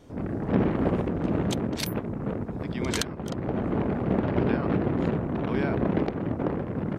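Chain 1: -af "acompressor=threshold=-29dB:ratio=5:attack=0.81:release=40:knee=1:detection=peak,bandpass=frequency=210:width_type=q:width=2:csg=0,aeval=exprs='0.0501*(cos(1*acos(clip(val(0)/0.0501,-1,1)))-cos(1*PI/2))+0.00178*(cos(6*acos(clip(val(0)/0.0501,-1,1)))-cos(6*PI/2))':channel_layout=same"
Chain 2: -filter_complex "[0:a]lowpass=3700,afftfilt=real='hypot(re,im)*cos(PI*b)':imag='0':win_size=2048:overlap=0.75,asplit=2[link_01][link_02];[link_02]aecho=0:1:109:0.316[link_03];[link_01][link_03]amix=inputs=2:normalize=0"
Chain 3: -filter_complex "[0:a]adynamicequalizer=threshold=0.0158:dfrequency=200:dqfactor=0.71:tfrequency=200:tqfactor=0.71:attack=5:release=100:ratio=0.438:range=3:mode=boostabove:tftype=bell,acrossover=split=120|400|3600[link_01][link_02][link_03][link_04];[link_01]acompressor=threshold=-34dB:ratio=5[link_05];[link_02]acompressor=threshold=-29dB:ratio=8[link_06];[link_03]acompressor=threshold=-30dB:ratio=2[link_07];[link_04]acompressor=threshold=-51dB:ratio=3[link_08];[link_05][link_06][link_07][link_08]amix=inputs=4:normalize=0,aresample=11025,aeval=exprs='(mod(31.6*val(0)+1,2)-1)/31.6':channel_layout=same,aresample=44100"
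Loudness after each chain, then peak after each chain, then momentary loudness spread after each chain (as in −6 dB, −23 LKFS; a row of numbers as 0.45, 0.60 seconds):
−38.0, −30.5, −34.0 LKFS; −26.0, −10.0, −25.0 dBFS; 2, 7, 1 LU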